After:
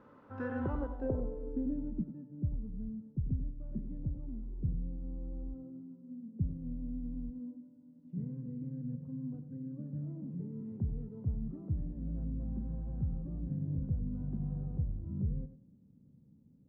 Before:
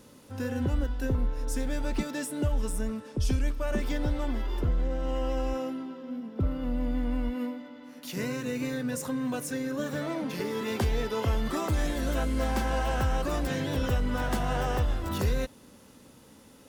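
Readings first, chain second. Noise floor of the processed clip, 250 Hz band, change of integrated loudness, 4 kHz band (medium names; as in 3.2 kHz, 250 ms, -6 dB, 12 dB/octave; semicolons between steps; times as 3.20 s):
-62 dBFS, -7.5 dB, -8.5 dB, under -40 dB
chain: bass shelf 85 Hz -7 dB; low-pass sweep 1.3 kHz -> 160 Hz, 0.61–2.10 s; tape echo 95 ms, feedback 23%, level -10 dB; trim -5.5 dB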